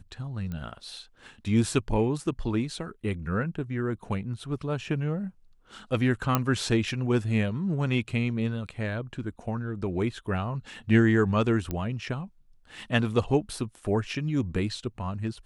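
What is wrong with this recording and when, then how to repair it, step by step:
0:00.52: click −24 dBFS
0:06.35: click −8 dBFS
0:11.71: click −17 dBFS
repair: click removal

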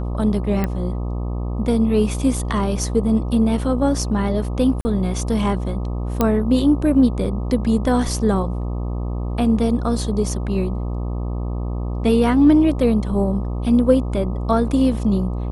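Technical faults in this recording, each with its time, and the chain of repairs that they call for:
mains buzz 60 Hz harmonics 21 −24 dBFS
0:00.64: click −10 dBFS
0:04.81–0:04.85: drop-out 40 ms
0:06.21: click −4 dBFS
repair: click removal
hum removal 60 Hz, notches 21
repair the gap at 0:04.81, 40 ms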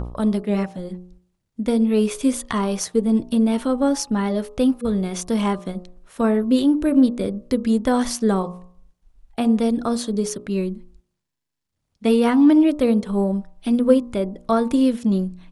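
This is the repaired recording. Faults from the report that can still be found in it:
none of them is left

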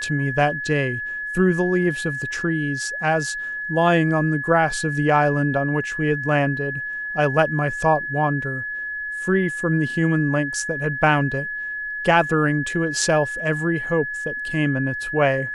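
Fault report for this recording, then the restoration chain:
whistle 1,700 Hz −26 dBFS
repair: notch filter 1,700 Hz, Q 30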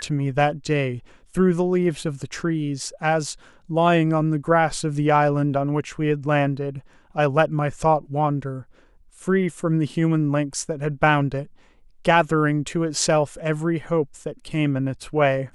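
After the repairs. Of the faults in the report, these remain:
none of them is left

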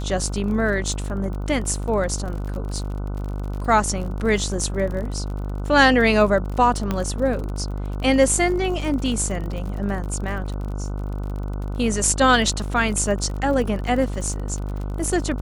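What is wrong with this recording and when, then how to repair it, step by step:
mains buzz 50 Hz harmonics 30 −27 dBFS
surface crackle 46 per second −30 dBFS
0:06.91: click −10 dBFS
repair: click removal
hum removal 50 Hz, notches 30

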